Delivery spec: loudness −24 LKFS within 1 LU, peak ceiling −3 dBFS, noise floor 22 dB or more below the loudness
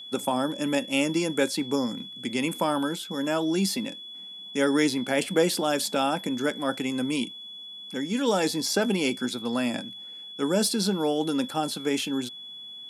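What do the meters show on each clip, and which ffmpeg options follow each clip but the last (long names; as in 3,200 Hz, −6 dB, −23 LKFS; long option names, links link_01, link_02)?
interfering tone 3,400 Hz; level of the tone −39 dBFS; integrated loudness −27.0 LKFS; sample peak −9.5 dBFS; target loudness −24.0 LKFS
→ -af "bandreject=frequency=3400:width=30"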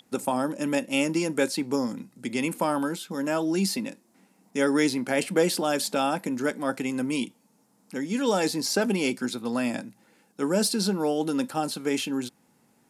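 interfering tone none found; integrated loudness −27.0 LKFS; sample peak −9.5 dBFS; target loudness −24.0 LKFS
→ -af "volume=3dB"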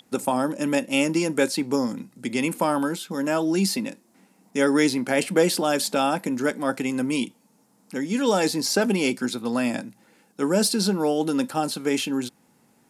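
integrated loudness −24.0 LKFS; sample peak −6.5 dBFS; background noise floor −62 dBFS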